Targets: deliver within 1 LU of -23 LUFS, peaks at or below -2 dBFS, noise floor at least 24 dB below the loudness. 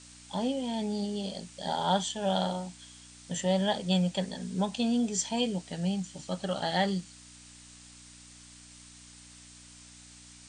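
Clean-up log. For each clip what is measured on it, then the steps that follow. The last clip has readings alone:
hum 60 Hz; harmonics up to 300 Hz; hum level -56 dBFS; noise floor -52 dBFS; noise floor target -55 dBFS; loudness -31.0 LUFS; peak -14.0 dBFS; loudness target -23.0 LUFS
-> de-hum 60 Hz, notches 5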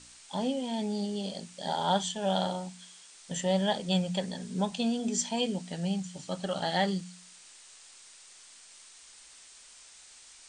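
hum none; noise floor -54 dBFS; noise floor target -56 dBFS
-> denoiser 6 dB, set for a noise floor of -54 dBFS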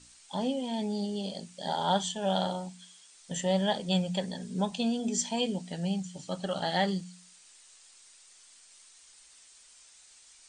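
noise floor -57 dBFS; loudness -31.5 LUFS; peak -14.5 dBFS; loudness target -23.0 LUFS
-> gain +8.5 dB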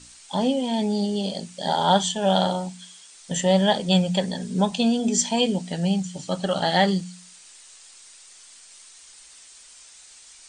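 loudness -23.0 LUFS; peak -6.0 dBFS; noise floor -49 dBFS

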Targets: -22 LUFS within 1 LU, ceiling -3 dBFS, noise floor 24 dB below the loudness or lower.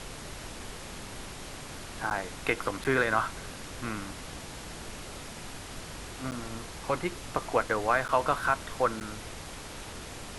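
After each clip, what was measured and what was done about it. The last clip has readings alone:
dropouts 5; longest dropout 9.5 ms; noise floor -43 dBFS; noise floor target -57 dBFS; loudness -33.0 LUFS; peak -9.5 dBFS; loudness target -22.0 LUFS
-> interpolate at 2.1/2.84/6.31/8.08/9, 9.5 ms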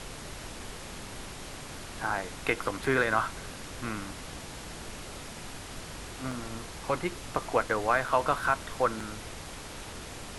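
dropouts 0; noise floor -43 dBFS; noise floor target -57 dBFS
-> noise print and reduce 14 dB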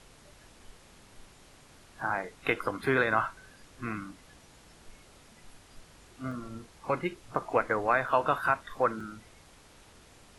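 noise floor -57 dBFS; loudness -30.5 LUFS; peak -10.0 dBFS; loudness target -22.0 LUFS
-> gain +8.5 dB; limiter -3 dBFS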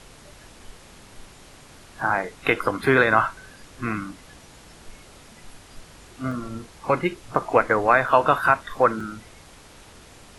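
loudness -22.0 LUFS; peak -3.0 dBFS; noise floor -48 dBFS

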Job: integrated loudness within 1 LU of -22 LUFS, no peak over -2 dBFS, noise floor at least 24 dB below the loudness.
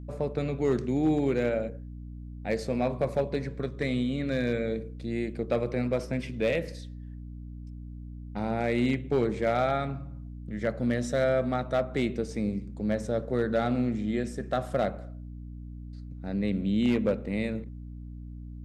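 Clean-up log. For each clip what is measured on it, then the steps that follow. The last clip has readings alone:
clipped 0.4%; flat tops at -18.0 dBFS; hum 60 Hz; harmonics up to 300 Hz; hum level -39 dBFS; loudness -29.5 LUFS; peak -18.0 dBFS; loudness target -22.0 LUFS
-> clip repair -18 dBFS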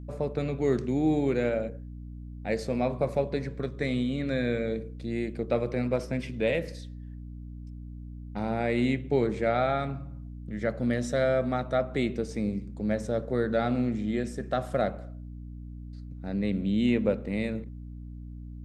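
clipped 0.0%; hum 60 Hz; harmonics up to 300 Hz; hum level -39 dBFS
-> notches 60/120/180/240/300 Hz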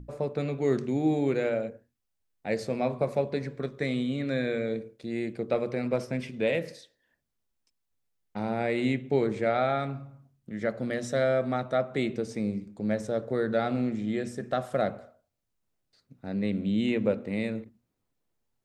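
hum none; loudness -29.5 LUFS; peak -13.0 dBFS; loudness target -22.0 LUFS
-> gain +7.5 dB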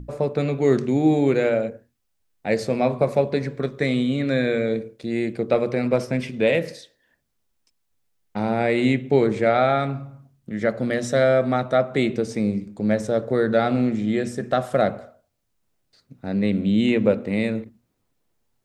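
loudness -22.0 LUFS; peak -5.5 dBFS; noise floor -72 dBFS

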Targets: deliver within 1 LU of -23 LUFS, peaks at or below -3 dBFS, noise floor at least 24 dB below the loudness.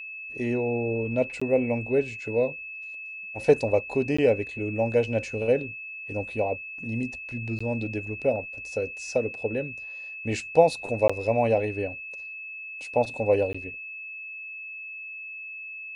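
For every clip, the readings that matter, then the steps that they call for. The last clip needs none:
dropouts 5; longest dropout 15 ms; steady tone 2600 Hz; tone level -36 dBFS; loudness -27.5 LUFS; peak -5.0 dBFS; loudness target -23.0 LUFS
-> interpolate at 1.4/4.17/7.59/11.08/13.53, 15 ms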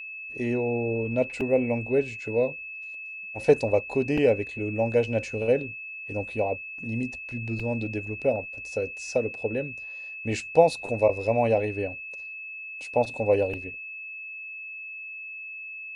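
dropouts 0; steady tone 2600 Hz; tone level -36 dBFS
-> notch 2600 Hz, Q 30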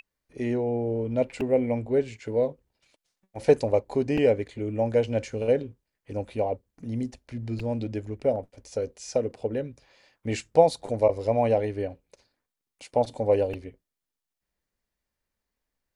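steady tone none; loudness -27.0 LUFS; peak -5.0 dBFS; loudness target -23.0 LUFS
-> gain +4 dB; limiter -3 dBFS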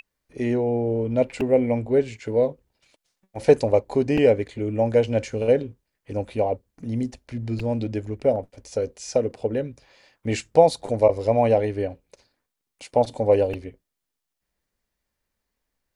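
loudness -23.0 LUFS; peak -3.0 dBFS; noise floor -83 dBFS

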